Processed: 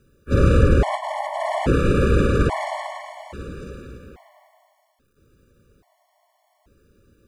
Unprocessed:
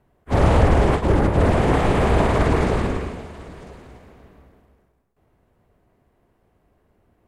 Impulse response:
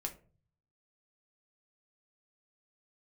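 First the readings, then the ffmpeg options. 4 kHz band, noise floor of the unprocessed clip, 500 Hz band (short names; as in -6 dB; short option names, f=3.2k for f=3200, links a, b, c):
-2.5 dB, -65 dBFS, -2.0 dB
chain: -filter_complex "[0:a]asplit=2[a][b];[b]acompressor=threshold=-32dB:ratio=5,volume=-1dB[c];[a][c]amix=inputs=2:normalize=0,acrusher=bits=10:mix=0:aa=0.000001,afftfilt=real='re*gt(sin(2*PI*0.6*pts/sr)*(1-2*mod(floor(b*sr/1024/580),2)),0)':imag='im*gt(sin(2*PI*0.6*pts/sr)*(1-2*mod(floor(b*sr/1024/580),2)),0)':win_size=1024:overlap=0.75"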